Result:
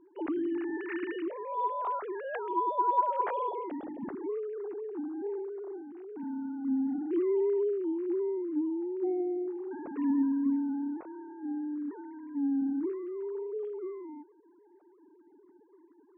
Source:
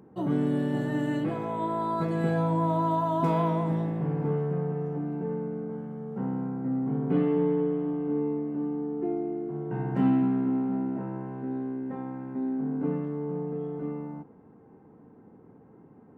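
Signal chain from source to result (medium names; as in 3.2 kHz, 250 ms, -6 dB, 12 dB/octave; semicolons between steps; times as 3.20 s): formants replaced by sine waves; trim -4 dB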